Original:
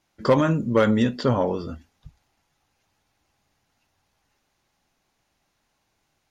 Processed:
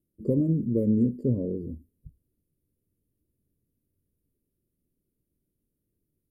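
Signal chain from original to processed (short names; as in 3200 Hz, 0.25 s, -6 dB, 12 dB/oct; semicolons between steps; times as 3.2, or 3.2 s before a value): inverse Chebyshev band-stop 780–6300 Hz, stop band 40 dB; gain -2 dB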